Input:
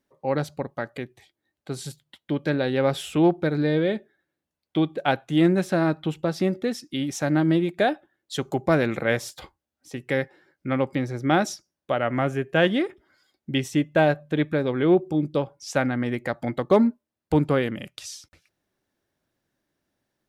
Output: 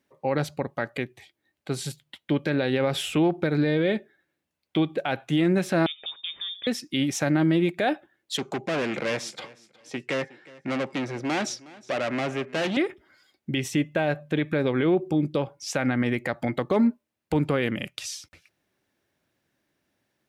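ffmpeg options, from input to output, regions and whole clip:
-filter_complex "[0:a]asettb=1/sr,asplit=3[s0][s1][s2];[s0]atrim=end=5.864[s3];[s1]atrim=start=5.86:end=6.67,asetpts=PTS-STARTPTS,afade=t=in:d=0.004:c=qsin,afade=t=out:st=0.806:d=0.004:c=qsin,agate=range=0.0224:threshold=0.00501:ratio=3:release=100:detection=peak,acompressor=threshold=0.01:ratio=3:attack=3.2:release=140:knee=1:detection=peak,lowpass=f=3200:t=q:w=0.5098,lowpass=f=3200:t=q:w=0.6013,lowpass=f=3200:t=q:w=0.9,lowpass=f=3200:t=q:w=2.563,afreqshift=-3800[s4];[s2]atrim=start=6.666[s5];[s3][s4]acrossfade=d=0.004:c1=hsin:c2=qsin[s6];[s6][s5]acrossfade=d=0.004:c1=qsin:c2=hsin,asettb=1/sr,asplit=3[s7][s8][s9];[s7]atrim=end=8.374[s10];[s8]atrim=start=8.37:end=12.77,asetpts=PTS-STARTPTS,afade=t=in:d=0.004:c=qsin,afade=t=out:st=4.396:d=0.004:c=qsin,volume=22.4,asoftclip=hard,volume=0.0447,highpass=180,lowpass=7200,aecho=1:1:364|728:0.0891|0.0232,atrim=end_sample=194040[s11];[s9]atrim=start=12.766[s12];[s10][s11]acrossfade=d=0.004:c1=hsin:c2=qsin[s13];[s13][s12]acrossfade=d=0.004:c1=qsin:c2=hsin,highpass=61,equalizer=f=2400:w=1.7:g=5,alimiter=limit=0.15:level=0:latency=1:release=67,volume=1.33"

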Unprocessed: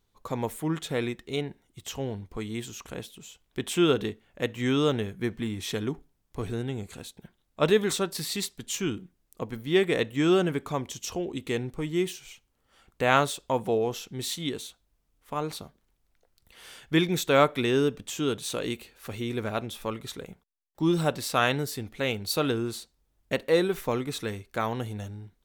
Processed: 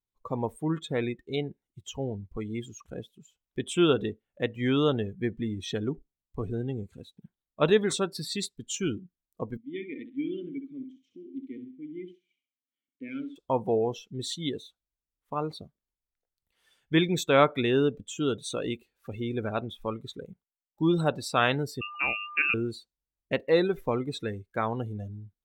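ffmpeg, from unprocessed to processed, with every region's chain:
-filter_complex "[0:a]asettb=1/sr,asplit=3[s0][s1][s2];[s0]atrim=end=9.574[s3];[s1]atrim=start=9.57:end=13.36,asetpts=PTS-STARTPTS,afade=t=in:d=0.004:c=qsin,afade=t=out:st=3.786:d=0.004:c=qsin,volume=4.22,asoftclip=hard,volume=0.237,asplit=3[s4][s5][s6];[s4]bandpass=f=270:t=q:w=8,volume=1[s7];[s5]bandpass=f=2290:t=q:w=8,volume=0.501[s8];[s6]bandpass=f=3010:t=q:w=8,volume=0.355[s9];[s7][s8][s9]amix=inputs=3:normalize=0,aecho=1:1:66|132|198|264|330:0.447|0.174|0.0679|0.0265|0.0103,atrim=end_sample=167139[s10];[s2]atrim=start=13.356[s11];[s3][s10]acrossfade=d=0.004:c1=hsin:c2=qsin[s12];[s12][s11]acrossfade=d=0.004:c1=qsin:c2=hsin,asettb=1/sr,asplit=3[s13][s14][s15];[s13]atrim=end=21.814[s16];[s14]atrim=start=21.81:end=22.54,asetpts=PTS-STARTPTS,afade=t=in:d=0.004:c=qsin,afade=t=out:st=0.726:d=0.004:c=qsin,aeval=exprs='val(0)+0.0112*sin(2*PI*1700*n/s)':c=same,lowpass=f=2500:t=q:w=0.5098,lowpass=f=2500:t=q:w=0.6013,lowpass=f=2500:t=q:w=0.9,lowpass=f=2500:t=q:w=2.563,afreqshift=-2900[s17];[s15]atrim=start=22.536[s18];[s16][s17]acrossfade=d=0.004:c1=hsin:c2=qsin[s19];[s19][s18]acrossfade=d=0.004:c1=qsin:c2=hsin,afftdn=nr=22:nf=-36,equalizer=f=16000:w=4.6:g=10"

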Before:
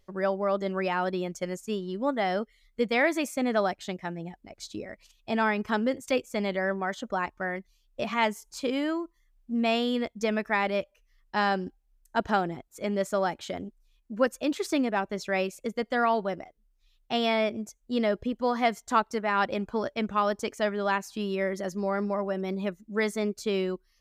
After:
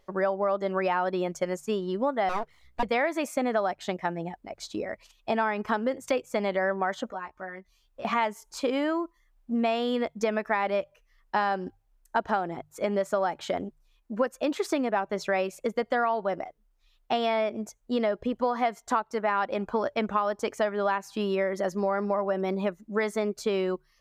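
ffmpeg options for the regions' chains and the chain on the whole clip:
-filter_complex "[0:a]asettb=1/sr,asplit=3[s0][s1][s2];[s0]atrim=end=2.294[s3];[s1]atrim=start=2.29:end=2.83,asetpts=PTS-STARTPTS,afade=t=in:d=0.004:c=qsin,afade=t=out:st=0.536:d=0.004:c=qsin,asubboost=boost=12:cutoff=82,aeval=exprs='abs(val(0))':c=same[s4];[s2]atrim=start=2.826[s5];[s3][s4]acrossfade=d=0.004:c1=hsin:c2=qsin[s6];[s6][s5]acrossfade=d=0.004:c1=qsin:c2=hsin,asettb=1/sr,asplit=3[s7][s8][s9];[s7]atrim=end=7.074[s10];[s8]atrim=start=7.07:end=8.05,asetpts=PTS-STARTPTS,afade=t=in:d=0.004:c=qsin,afade=t=out:st=0.976:d=0.004:c=qsin,asubboost=boost=7:cutoff=110,acompressor=threshold=0.00141:ratio=2:attack=3.2:release=140:knee=1:detection=peak,asplit=2[s11][s12];[s12]adelay=16,volume=0.708[s13];[s11][s13]amix=inputs=2:normalize=0,atrim=end_sample=43218[s14];[s9]atrim=start=8.046[s15];[s10][s14]acrossfade=d=0.004:c1=hsin:c2=qsin[s16];[s16][s15]acrossfade=d=0.004:c1=qsin:c2=hsin,equalizer=f=860:t=o:w=2.5:g=9.5,bandreject=f=50:t=h:w=6,bandreject=f=100:t=h:w=6,bandreject=f=150:t=h:w=6,acompressor=threshold=0.0708:ratio=6"

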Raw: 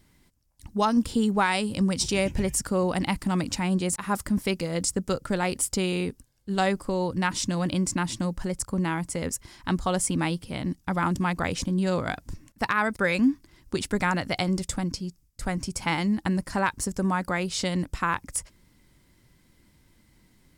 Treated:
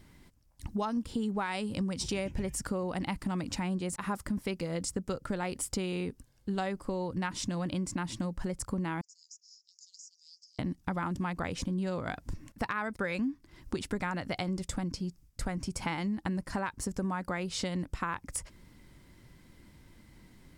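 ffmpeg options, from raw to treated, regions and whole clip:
-filter_complex "[0:a]asettb=1/sr,asplit=3[s0][s1][s2];[s0]atrim=end=9.014[s3];[s1]atrim=start=9.01:end=10.59,asetpts=PTS-STARTPTS,afade=t=in:d=0.004:c=qsin,afade=t=out:st=1.576:d=0.004:c=qsin,asuperpass=centerf=5900:order=8:qfactor=2.7,acompressor=threshold=0.00447:ratio=8:attack=3.2:release=140:knee=1:detection=peak[s4];[s2]atrim=start=10.586[s5];[s3][s4]acrossfade=d=0.004:c1=hsin:c2=qsin[s6];[s6][s5]acrossfade=d=0.004:c1=qsin:c2=hsin,highshelf=f=4000:g=-6.5,acompressor=threshold=0.0141:ratio=4,volume=1.68"

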